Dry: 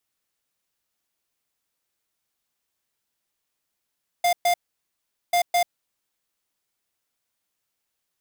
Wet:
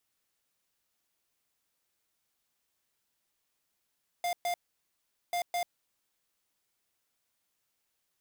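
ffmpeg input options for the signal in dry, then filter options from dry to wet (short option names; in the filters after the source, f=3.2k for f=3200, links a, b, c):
-f lavfi -i "aevalsrc='0.106*(2*lt(mod(702*t,1),0.5)-1)*clip(min(mod(mod(t,1.09),0.21),0.09-mod(mod(t,1.09),0.21))/0.005,0,1)*lt(mod(t,1.09),0.42)':d=2.18:s=44100"
-af "asoftclip=type=tanh:threshold=-31dB"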